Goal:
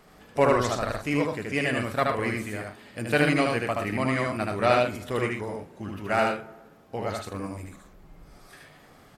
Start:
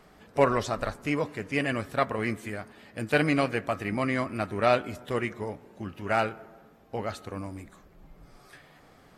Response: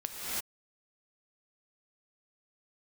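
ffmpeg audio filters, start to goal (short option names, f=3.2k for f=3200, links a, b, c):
-filter_complex "[0:a]highshelf=f=6k:g=4.5,asplit=2[a][b];[b]aecho=0:1:75.8|116.6:0.794|0.355[c];[a][c]amix=inputs=2:normalize=0"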